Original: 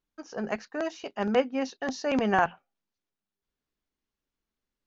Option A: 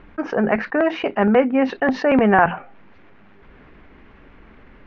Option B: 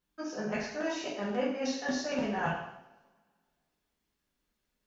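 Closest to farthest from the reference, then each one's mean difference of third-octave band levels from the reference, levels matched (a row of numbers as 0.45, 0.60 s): A, B; 5.5, 8.5 dB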